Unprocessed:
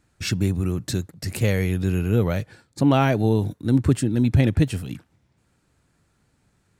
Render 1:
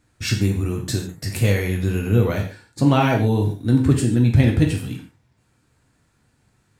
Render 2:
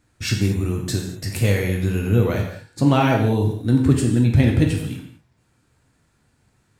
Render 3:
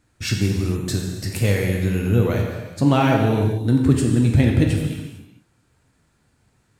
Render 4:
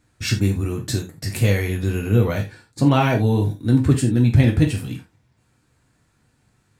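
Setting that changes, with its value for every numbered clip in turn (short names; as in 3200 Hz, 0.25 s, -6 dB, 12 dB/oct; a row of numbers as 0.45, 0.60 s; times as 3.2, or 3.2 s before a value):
non-linear reverb, gate: 0.17, 0.26, 0.48, 0.11 s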